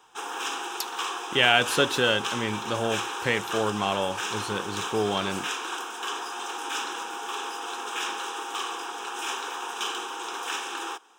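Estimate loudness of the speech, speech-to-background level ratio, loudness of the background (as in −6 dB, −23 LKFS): −26.0 LKFS, 6.0 dB, −32.0 LKFS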